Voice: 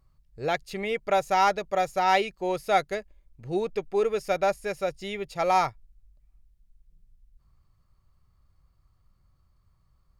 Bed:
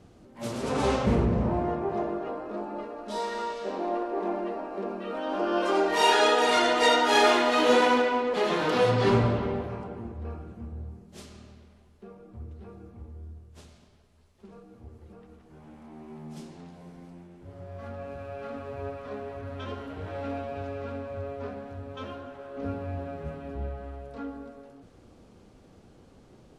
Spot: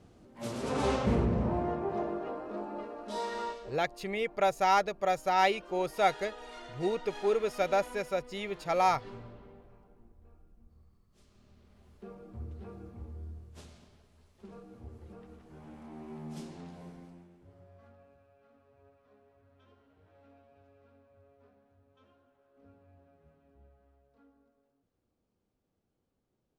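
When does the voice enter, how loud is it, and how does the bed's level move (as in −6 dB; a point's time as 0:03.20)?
3.30 s, −3.5 dB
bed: 0:03.49 −4 dB
0:03.87 −24.5 dB
0:11.10 −24.5 dB
0:11.89 −0.5 dB
0:16.84 −0.5 dB
0:18.35 −27 dB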